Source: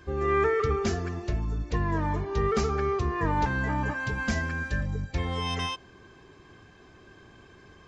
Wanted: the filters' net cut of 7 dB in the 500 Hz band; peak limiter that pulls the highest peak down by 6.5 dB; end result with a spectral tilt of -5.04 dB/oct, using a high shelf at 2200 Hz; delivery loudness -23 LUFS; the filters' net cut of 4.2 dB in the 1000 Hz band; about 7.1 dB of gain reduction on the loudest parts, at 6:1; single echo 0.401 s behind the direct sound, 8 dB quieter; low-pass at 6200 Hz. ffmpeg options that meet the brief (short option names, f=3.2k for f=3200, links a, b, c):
-af "lowpass=6.2k,equalizer=f=500:t=o:g=-9,equalizer=f=1k:t=o:g=-4.5,highshelf=f=2.2k:g=6.5,acompressor=threshold=-31dB:ratio=6,alimiter=level_in=4.5dB:limit=-24dB:level=0:latency=1,volume=-4.5dB,aecho=1:1:401:0.398,volume=14dB"